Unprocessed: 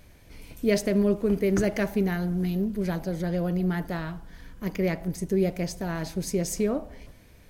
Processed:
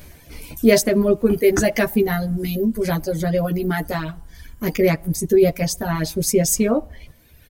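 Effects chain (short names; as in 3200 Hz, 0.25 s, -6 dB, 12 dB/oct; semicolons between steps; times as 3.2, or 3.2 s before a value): high shelf 9000 Hz +9.5 dB; doubler 13 ms -3.5 dB; reverb removal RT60 1.7 s; gain +8.5 dB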